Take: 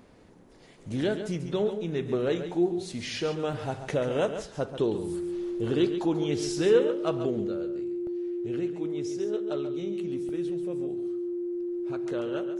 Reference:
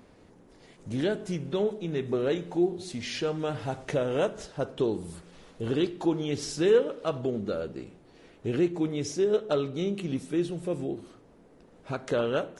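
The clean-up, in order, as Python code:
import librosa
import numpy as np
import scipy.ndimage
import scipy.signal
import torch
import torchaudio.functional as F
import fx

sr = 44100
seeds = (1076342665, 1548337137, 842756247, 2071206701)

y = fx.notch(x, sr, hz=350.0, q=30.0)
y = fx.fix_interpolate(y, sr, at_s=(3.53, 8.07, 10.29), length_ms=1.5)
y = fx.fix_echo_inverse(y, sr, delay_ms=138, level_db=-10.0)
y = fx.gain(y, sr, db=fx.steps((0.0, 0.0), (7.47, 8.0)))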